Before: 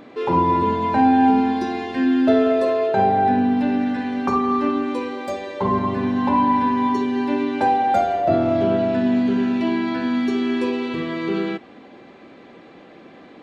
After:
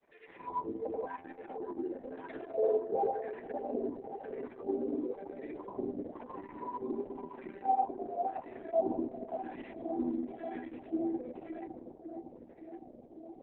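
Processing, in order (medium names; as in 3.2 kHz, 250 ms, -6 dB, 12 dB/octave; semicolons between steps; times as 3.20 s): dynamic bell 200 Hz, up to -3 dB, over -32 dBFS, Q 1.2; brick-wall FIR low-pass 4.1 kHz; wah-wah 0.97 Hz 320–1900 Hz, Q 7.5; granulator 100 ms, spray 11 ms, pitch spread up and down by 0 st; tilt shelf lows +5 dB, about 1.5 kHz; granulator, pitch spread up and down by 0 st; phaser 0.19 Hz, delay 4.5 ms, feedback 22%; static phaser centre 2.9 kHz, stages 4; bucket-brigade echo 559 ms, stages 4096, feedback 76%, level -9.5 dB; trim -2 dB; Opus 6 kbps 48 kHz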